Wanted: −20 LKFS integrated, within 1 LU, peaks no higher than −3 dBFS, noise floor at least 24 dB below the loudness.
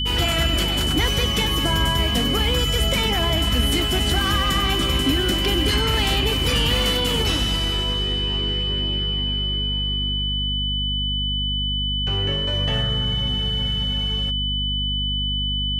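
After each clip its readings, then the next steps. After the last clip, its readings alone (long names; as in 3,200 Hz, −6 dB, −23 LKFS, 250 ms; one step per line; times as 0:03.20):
mains hum 50 Hz; hum harmonics up to 250 Hz; level of the hum −24 dBFS; interfering tone 3,000 Hz; level of the tone −23 dBFS; integrated loudness −20.5 LKFS; sample peak −8.5 dBFS; target loudness −20.0 LKFS
→ hum removal 50 Hz, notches 5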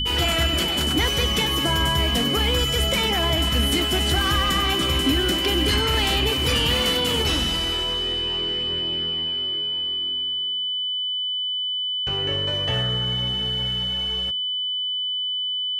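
mains hum none found; interfering tone 3,000 Hz; level of the tone −23 dBFS
→ notch filter 3,000 Hz, Q 30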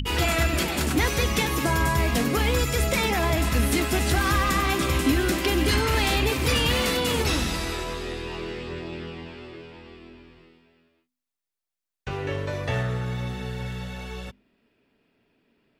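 interfering tone none found; integrated loudness −24.5 LKFS; sample peak −11.0 dBFS; target loudness −20.0 LKFS
→ level +4.5 dB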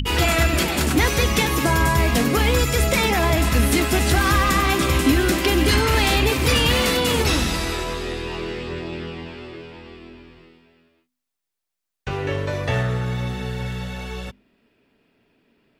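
integrated loudness −20.0 LKFS; sample peak −6.5 dBFS; background noise floor −82 dBFS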